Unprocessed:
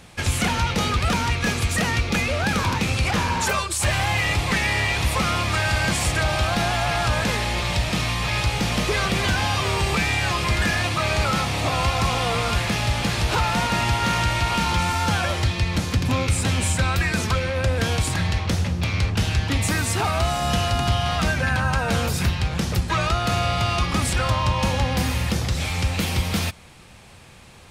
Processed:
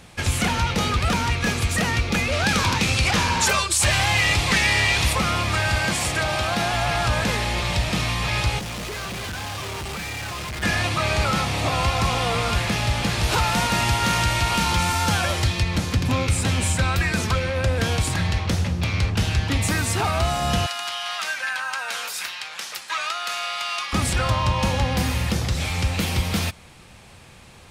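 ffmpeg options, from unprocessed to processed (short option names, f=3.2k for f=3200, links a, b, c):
-filter_complex "[0:a]asettb=1/sr,asplit=3[a][b][c];[a]atrim=end=2.324[d];[b]atrim=start=2.32:end=5.13,asetpts=PTS-STARTPTS,afade=t=in:d=0.004:c=qsin,afade=t=out:st=2.806:d=0.004:c=qsin,equalizer=f=5.3k:w=0.41:g=6[e];[c]atrim=start=5.126[f];[d][e]acrossfade=d=0.004:c1=hsin:c2=qsin[g];[g][f]acrossfade=d=0.004:c1=qsin:c2=hsin,asettb=1/sr,asplit=3[h][i][j];[h]atrim=end=5.794[k];[i]atrim=start=5.79:end=6.74,asetpts=PTS-STARTPTS,afade=t=in:d=0.004:c=qsin,afade=t=out:st=0.946:d=0.004:c=qsin,highpass=f=140:p=1[l];[j]atrim=start=6.736[m];[k][l]acrossfade=d=0.004:c1=hsin:c2=qsin[n];[n][m]acrossfade=d=0.004:c1=qsin:c2=hsin,asettb=1/sr,asplit=3[o][p][q];[o]atrim=end=8.594[r];[p]atrim=start=8.59:end=10.63,asetpts=PTS-STARTPTS,afade=t=in:d=0.004:c=qsin,afade=t=out:st=2.036:d=0.004:c=qsin,volume=29.5dB,asoftclip=hard,volume=-29.5dB[s];[q]atrim=start=10.626[t];[r][s]acrossfade=d=0.004:c1=hsin:c2=qsin[u];[u][t]acrossfade=d=0.004:c1=qsin:c2=hsin,asettb=1/sr,asplit=3[v][w][x];[v]atrim=end=13.234[y];[w]atrim=start=13.23:end=15.63,asetpts=PTS-STARTPTS,afade=t=in:d=0.004:c=qsin,afade=t=out:st=2.396:d=0.004:c=qsin,highshelf=f=5.5k:g=7[z];[x]atrim=start=15.626[aa];[y][z]acrossfade=d=0.004:c1=hsin:c2=qsin[ab];[ab][aa]acrossfade=d=0.004:c1=qsin:c2=hsin,asettb=1/sr,asplit=3[ac][ad][ae];[ac]atrim=end=20.664[af];[ad]atrim=start=20.66:end=23.93,asetpts=PTS-STARTPTS,afade=t=in:d=0.004:c=qsin,afade=t=out:st=3.266:d=0.004:c=qsin,highpass=1.2k[ag];[ae]atrim=start=23.926[ah];[af][ag]acrossfade=d=0.004:c1=hsin:c2=qsin[ai];[ai][ah]acrossfade=d=0.004:c1=qsin:c2=hsin"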